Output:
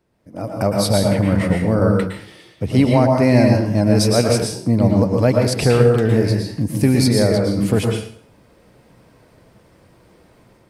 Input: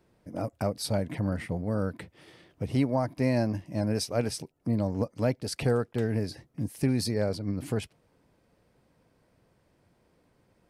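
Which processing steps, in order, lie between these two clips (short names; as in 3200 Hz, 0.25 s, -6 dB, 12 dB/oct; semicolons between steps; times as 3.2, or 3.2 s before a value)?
AGC gain up to 15.5 dB; plate-style reverb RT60 0.57 s, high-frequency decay 0.9×, pre-delay 0.1 s, DRR 0.5 dB; 1.79–2.7 three-band expander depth 40%; gain -2 dB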